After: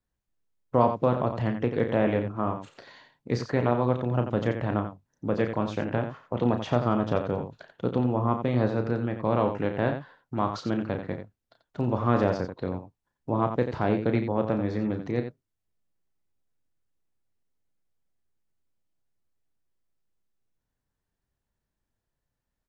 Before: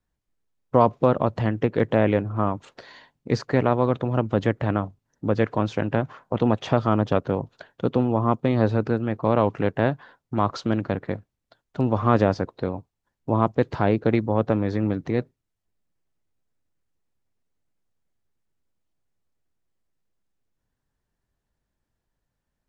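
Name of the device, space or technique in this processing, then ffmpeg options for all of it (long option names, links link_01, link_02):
slapback doubling: -filter_complex "[0:a]asplit=3[link_01][link_02][link_03];[link_02]adelay=33,volume=-8dB[link_04];[link_03]adelay=88,volume=-8.5dB[link_05];[link_01][link_04][link_05]amix=inputs=3:normalize=0,volume=-5dB"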